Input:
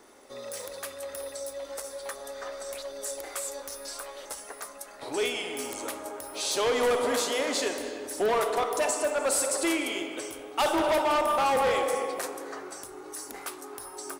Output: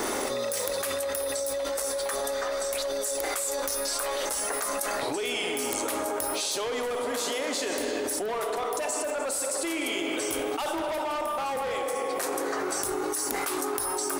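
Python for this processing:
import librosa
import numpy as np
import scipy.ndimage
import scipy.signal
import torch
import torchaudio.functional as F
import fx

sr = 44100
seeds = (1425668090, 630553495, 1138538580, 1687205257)

y = fx.high_shelf(x, sr, hz=11000.0, db=4.5)
y = fx.env_flatten(y, sr, amount_pct=100)
y = y * librosa.db_to_amplitude(-7.5)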